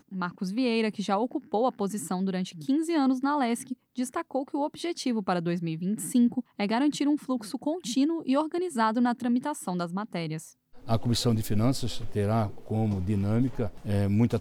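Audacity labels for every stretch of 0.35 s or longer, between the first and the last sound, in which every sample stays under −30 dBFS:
10.380000	10.880000	silence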